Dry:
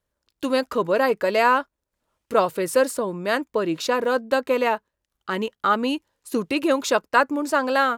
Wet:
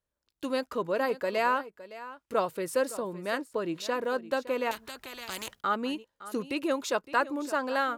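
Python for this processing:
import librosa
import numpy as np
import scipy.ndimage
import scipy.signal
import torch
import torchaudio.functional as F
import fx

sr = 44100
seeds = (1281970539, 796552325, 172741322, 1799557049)

p1 = x + fx.echo_single(x, sr, ms=563, db=-16.0, dry=0)
p2 = fx.spectral_comp(p1, sr, ratio=4.0, at=(4.71, 5.61))
y = F.gain(torch.from_numpy(p2), -8.5).numpy()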